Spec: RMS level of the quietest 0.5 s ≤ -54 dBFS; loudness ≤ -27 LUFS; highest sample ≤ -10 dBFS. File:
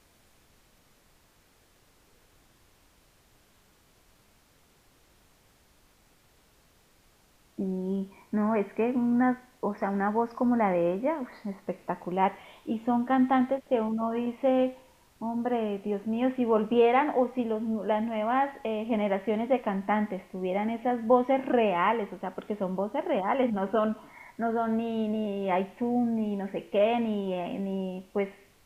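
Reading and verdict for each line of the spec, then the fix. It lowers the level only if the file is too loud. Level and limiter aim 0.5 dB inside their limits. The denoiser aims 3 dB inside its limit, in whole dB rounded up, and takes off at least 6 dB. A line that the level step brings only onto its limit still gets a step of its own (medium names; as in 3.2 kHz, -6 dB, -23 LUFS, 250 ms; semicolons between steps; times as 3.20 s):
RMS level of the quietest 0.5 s -63 dBFS: pass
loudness -28.5 LUFS: pass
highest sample -11.0 dBFS: pass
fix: none needed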